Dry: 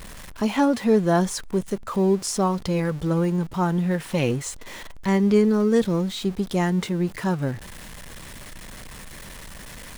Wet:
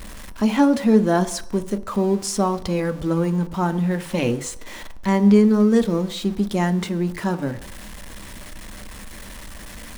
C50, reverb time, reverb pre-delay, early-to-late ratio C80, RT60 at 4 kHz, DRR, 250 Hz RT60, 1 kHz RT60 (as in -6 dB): 16.5 dB, 0.70 s, 3 ms, 19.0 dB, 0.70 s, 11.0 dB, 0.55 s, 0.70 s